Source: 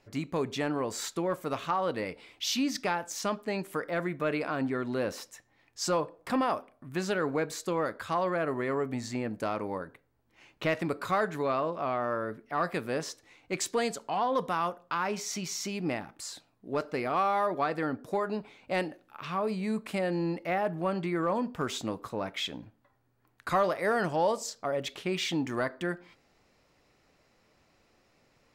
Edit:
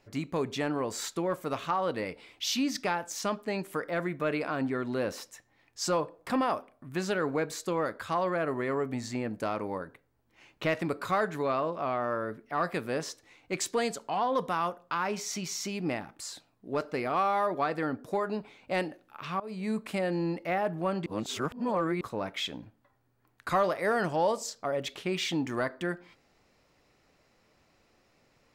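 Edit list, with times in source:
19.4–19.69 fade in, from -20 dB
21.06–22.01 reverse

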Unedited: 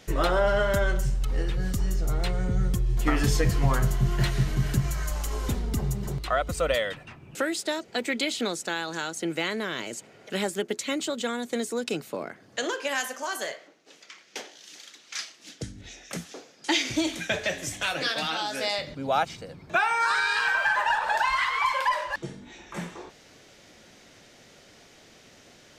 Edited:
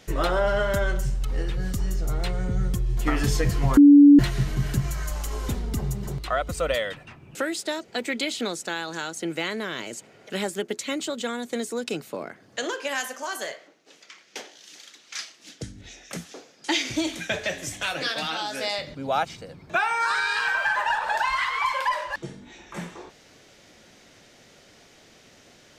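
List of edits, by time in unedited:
3.77–4.19 bleep 287 Hz -7.5 dBFS

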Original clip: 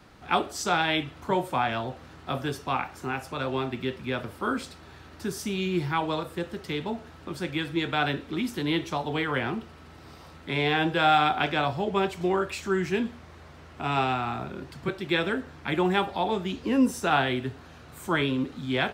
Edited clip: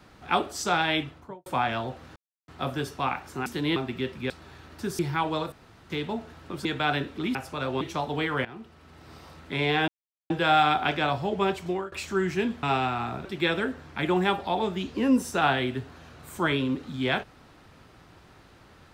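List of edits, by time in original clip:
0.99–1.46 studio fade out
2.16 insert silence 0.32 s
3.14–3.6 swap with 8.48–8.78
4.14–4.71 cut
5.4–5.76 cut
6.29–6.67 room tone
7.42–7.78 cut
9.42–10.12 fade in, from -17 dB
10.85 insert silence 0.42 s
12.04–12.47 fade out equal-power, to -21 dB
13.18–13.9 cut
14.52–14.94 cut

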